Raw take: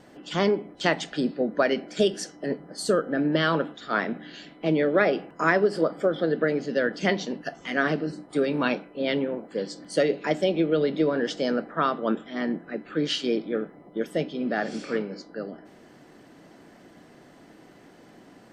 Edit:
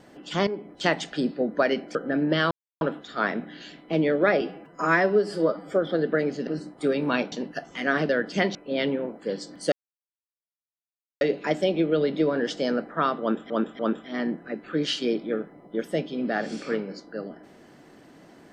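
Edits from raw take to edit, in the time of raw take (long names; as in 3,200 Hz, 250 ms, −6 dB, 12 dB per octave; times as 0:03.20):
0:00.47–0:00.73: fade in, from −12 dB
0:01.95–0:02.98: remove
0:03.54: splice in silence 0.30 s
0:05.14–0:06.02: time-stretch 1.5×
0:06.76–0:07.22: swap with 0:07.99–0:08.84
0:10.01: splice in silence 1.49 s
0:12.01–0:12.30: repeat, 3 plays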